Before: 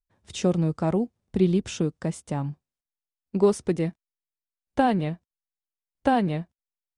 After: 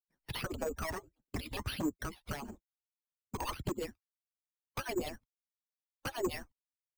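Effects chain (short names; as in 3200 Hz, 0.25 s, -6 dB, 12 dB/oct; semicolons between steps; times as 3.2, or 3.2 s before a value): median-filter separation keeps percussive; gate -54 dBFS, range -31 dB; dynamic EQ 340 Hz, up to +3 dB, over -36 dBFS, Q 2.4; compressor 10:1, threshold -35 dBFS, peak gain reduction 17 dB; wavefolder -37 dBFS; 0.7–3.37 notch comb 170 Hz; phaser 1.6 Hz, delay 1.2 ms, feedback 69%; careless resampling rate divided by 6×, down filtered, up hold; three-band squash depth 40%; gain +5 dB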